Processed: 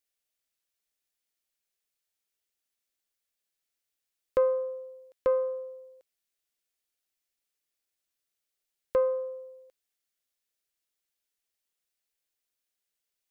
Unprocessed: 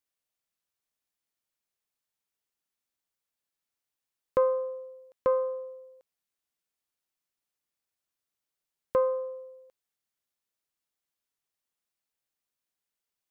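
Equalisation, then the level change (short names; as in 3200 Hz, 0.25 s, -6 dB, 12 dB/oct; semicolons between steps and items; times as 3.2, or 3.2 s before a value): graphic EQ 125/250/1000 Hz -11/-4/-8 dB; +3.0 dB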